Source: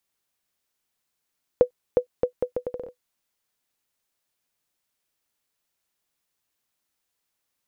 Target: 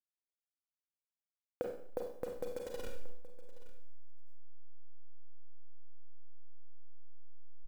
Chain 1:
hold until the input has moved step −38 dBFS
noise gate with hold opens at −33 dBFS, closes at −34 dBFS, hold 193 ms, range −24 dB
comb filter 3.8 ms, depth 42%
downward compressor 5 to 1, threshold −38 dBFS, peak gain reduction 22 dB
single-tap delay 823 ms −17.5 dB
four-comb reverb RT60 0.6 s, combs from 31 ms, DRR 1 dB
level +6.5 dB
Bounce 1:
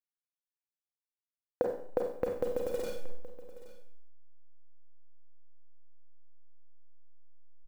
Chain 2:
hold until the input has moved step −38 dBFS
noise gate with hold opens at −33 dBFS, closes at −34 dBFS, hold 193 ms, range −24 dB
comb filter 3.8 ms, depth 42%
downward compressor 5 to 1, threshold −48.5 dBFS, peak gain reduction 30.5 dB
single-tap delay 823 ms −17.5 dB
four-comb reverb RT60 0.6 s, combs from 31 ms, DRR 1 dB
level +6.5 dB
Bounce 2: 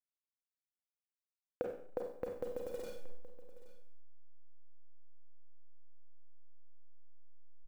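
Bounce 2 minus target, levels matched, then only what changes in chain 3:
hold until the input has moved: distortion −8 dB
change: hold until the input has moved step −29.5 dBFS

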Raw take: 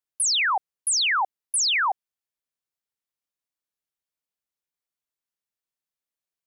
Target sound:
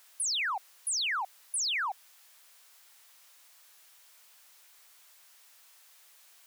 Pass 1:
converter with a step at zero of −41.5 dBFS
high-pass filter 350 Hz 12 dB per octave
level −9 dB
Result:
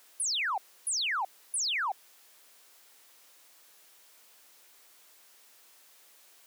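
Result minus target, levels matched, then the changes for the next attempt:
250 Hz band +11.5 dB
change: high-pass filter 770 Hz 12 dB per octave

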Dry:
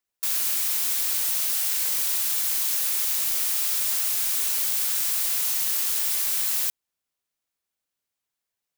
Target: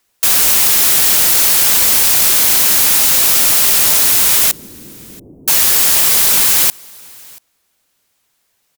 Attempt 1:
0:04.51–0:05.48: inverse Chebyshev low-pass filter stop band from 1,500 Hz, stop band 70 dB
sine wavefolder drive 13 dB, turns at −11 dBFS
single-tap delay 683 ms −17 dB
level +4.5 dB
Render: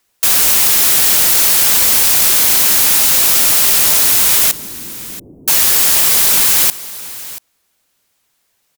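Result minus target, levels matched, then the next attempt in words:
echo-to-direct +9 dB
0:04.51–0:05.48: inverse Chebyshev low-pass filter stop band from 1,500 Hz, stop band 70 dB
sine wavefolder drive 13 dB, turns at −11 dBFS
single-tap delay 683 ms −26 dB
level +4.5 dB

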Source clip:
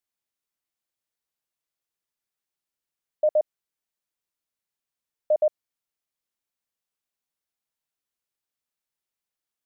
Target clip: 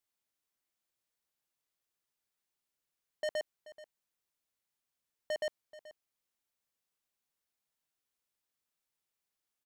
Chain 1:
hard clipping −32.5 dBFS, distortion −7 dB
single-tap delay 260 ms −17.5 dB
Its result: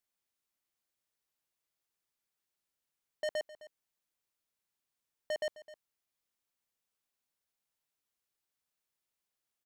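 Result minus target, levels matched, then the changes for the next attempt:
echo 171 ms early
change: single-tap delay 431 ms −17.5 dB

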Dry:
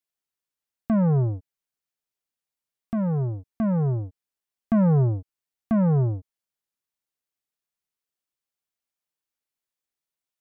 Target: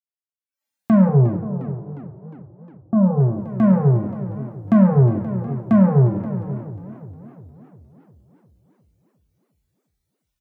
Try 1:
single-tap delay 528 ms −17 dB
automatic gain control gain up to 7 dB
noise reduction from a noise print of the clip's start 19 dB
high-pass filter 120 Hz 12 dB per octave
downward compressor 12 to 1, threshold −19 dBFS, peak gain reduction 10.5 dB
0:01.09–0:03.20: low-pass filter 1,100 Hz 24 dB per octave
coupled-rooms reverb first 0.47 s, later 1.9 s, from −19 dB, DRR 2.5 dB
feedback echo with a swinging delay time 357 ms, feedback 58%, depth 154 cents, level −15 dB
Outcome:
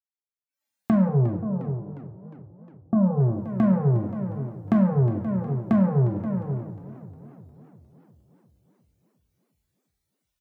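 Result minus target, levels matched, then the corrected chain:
downward compressor: peak gain reduction +7 dB
single-tap delay 528 ms −17 dB
automatic gain control gain up to 7 dB
noise reduction from a noise print of the clip's start 19 dB
high-pass filter 120 Hz 12 dB per octave
downward compressor 12 to 1, threshold −11.5 dBFS, peak gain reduction 3.5 dB
0:01.09–0:03.20: low-pass filter 1,100 Hz 24 dB per octave
coupled-rooms reverb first 0.47 s, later 1.9 s, from −19 dB, DRR 2.5 dB
feedback echo with a swinging delay time 357 ms, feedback 58%, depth 154 cents, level −15 dB

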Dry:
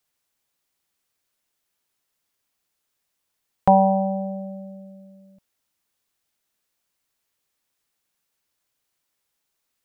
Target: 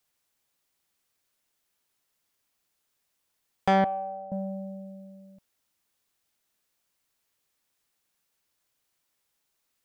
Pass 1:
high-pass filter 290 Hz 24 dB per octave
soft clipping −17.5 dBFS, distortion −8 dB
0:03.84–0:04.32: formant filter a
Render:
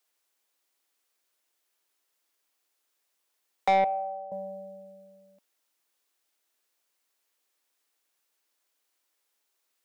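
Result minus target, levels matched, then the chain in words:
250 Hz band −13.5 dB
soft clipping −17.5 dBFS, distortion −7 dB
0:03.84–0:04.32: formant filter a

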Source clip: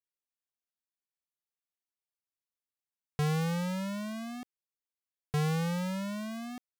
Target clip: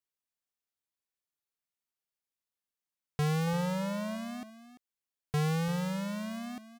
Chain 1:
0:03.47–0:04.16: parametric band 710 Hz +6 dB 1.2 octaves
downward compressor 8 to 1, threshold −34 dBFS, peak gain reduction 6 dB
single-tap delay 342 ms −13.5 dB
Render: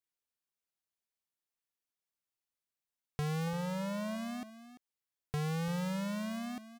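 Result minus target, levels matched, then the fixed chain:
downward compressor: peak gain reduction +6 dB
0:03.47–0:04.16: parametric band 710 Hz +6 dB 1.2 octaves
single-tap delay 342 ms −13.5 dB

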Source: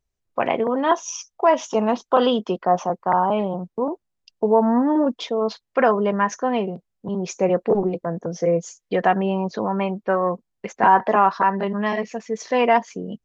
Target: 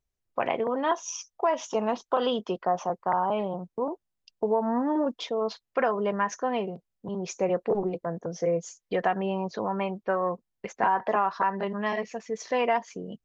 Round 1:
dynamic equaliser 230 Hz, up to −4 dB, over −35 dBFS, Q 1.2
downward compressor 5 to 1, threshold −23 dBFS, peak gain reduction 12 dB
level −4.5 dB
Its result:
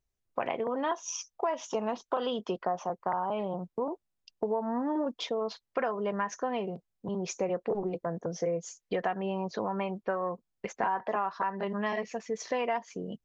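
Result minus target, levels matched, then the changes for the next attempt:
downward compressor: peak gain reduction +6 dB
change: downward compressor 5 to 1, threshold −15.5 dBFS, peak gain reduction 6 dB

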